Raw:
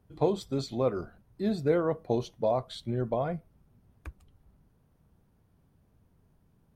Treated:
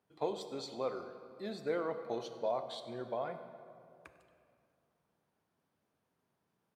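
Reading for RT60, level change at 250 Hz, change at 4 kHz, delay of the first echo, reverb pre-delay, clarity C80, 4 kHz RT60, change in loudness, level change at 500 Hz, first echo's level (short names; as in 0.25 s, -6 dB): 2.4 s, -13.0 dB, -4.0 dB, 99 ms, 28 ms, 10.0 dB, 1.5 s, -9.0 dB, -8.0 dB, -18.5 dB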